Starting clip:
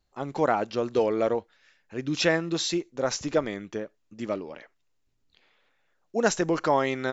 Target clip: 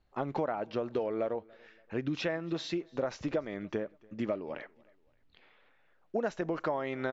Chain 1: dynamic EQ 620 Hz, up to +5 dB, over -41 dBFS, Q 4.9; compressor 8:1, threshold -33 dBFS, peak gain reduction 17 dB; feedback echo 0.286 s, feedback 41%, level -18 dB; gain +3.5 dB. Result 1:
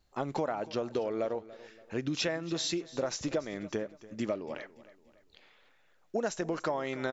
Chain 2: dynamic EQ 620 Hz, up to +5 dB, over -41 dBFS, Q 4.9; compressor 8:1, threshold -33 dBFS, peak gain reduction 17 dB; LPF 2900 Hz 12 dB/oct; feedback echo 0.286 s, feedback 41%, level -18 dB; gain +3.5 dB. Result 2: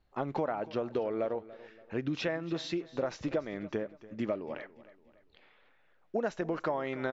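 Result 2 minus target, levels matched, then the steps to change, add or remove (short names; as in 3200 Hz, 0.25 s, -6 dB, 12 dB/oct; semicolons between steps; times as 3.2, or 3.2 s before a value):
echo-to-direct +8 dB
change: feedback echo 0.286 s, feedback 41%, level -26 dB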